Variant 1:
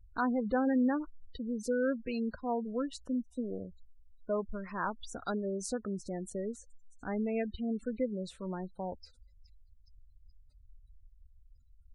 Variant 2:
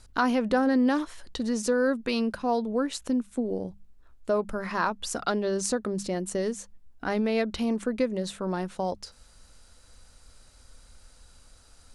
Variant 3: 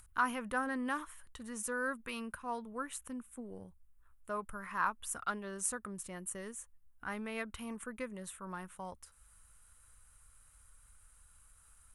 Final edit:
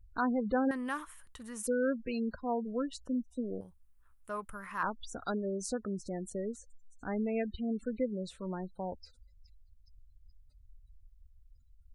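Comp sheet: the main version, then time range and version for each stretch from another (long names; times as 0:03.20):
1
0:00.71–0:01.67: punch in from 3
0:03.61–0:04.83: punch in from 3
not used: 2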